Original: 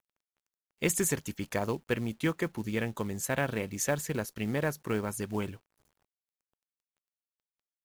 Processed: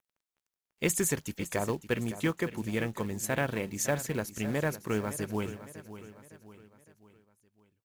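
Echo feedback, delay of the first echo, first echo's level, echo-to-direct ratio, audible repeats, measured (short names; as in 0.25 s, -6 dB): 46%, 0.559 s, -13.5 dB, -12.5 dB, 4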